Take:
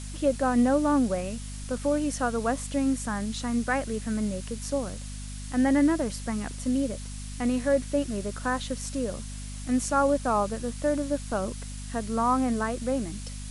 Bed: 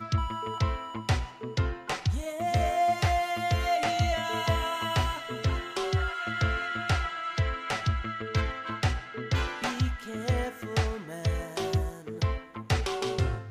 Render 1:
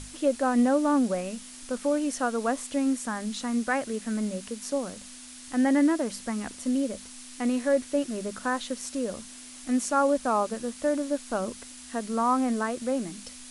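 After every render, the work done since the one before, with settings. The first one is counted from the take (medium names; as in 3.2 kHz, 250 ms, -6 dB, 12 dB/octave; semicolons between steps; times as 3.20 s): hum notches 50/100/150/200 Hz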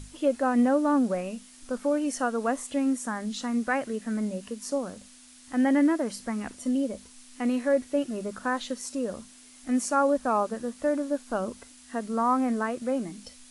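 noise print and reduce 7 dB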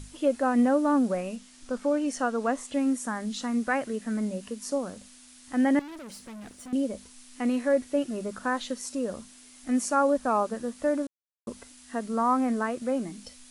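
1.36–2.74 s: low-pass 8.3 kHz; 5.79–6.73 s: valve stage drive 40 dB, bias 0.5; 11.07–11.47 s: mute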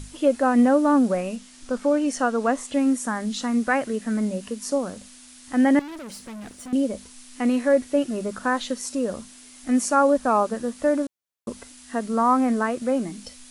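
trim +5 dB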